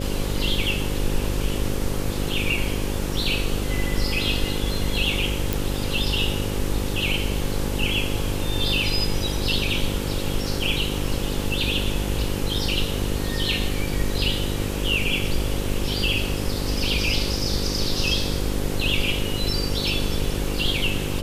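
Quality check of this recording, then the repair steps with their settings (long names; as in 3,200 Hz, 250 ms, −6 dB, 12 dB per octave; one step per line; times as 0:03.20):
mains buzz 50 Hz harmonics 11 −28 dBFS
0:05.53: click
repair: click removal
hum removal 50 Hz, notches 11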